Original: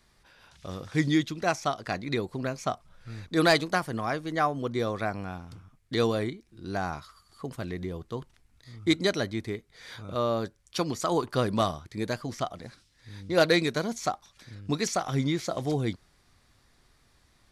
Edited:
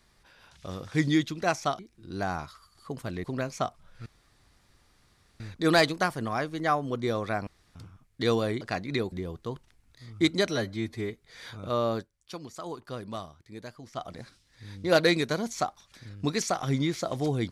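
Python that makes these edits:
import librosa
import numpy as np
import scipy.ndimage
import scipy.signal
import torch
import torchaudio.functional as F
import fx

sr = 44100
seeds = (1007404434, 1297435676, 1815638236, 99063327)

y = fx.edit(x, sr, fx.swap(start_s=1.79, length_s=0.51, other_s=6.33, other_length_s=1.45),
    fx.insert_room_tone(at_s=3.12, length_s=1.34),
    fx.room_tone_fill(start_s=5.19, length_s=0.28),
    fx.stretch_span(start_s=9.15, length_s=0.41, factor=1.5),
    fx.fade_down_up(start_s=10.42, length_s=2.09, db=-11.5, fade_s=0.12), tone=tone)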